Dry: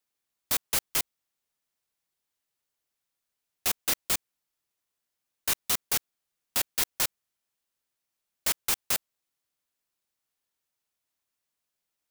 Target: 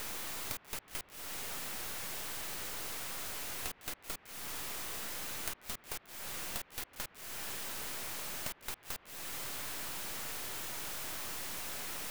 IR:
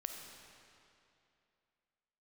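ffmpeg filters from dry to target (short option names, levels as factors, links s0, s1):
-filter_complex "[0:a]aeval=exprs='val(0)+0.5*0.0188*sgn(val(0))':c=same,acompressor=threshold=0.0112:ratio=16,acrossover=split=120|1700|2500[s0][s1][s2][s3];[s3]acrusher=bits=5:dc=4:mix=0:aa=0.000001[s4];[s0][s1][s2][s4]amix=inputs=4:normalize=0,volume=1.5"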